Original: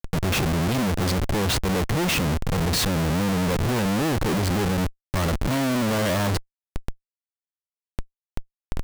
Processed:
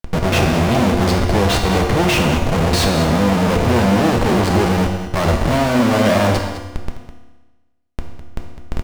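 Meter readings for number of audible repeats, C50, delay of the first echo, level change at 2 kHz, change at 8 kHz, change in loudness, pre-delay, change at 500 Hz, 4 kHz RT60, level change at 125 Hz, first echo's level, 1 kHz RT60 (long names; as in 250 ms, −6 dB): 1, 4.5 dB, 206 ms, +7.5 dB, +3.0 dB, +7.5 dB, 4 ms, +10.0 dB, 1.1 s, +6.5 dB, −12.0 dB, 1.2 s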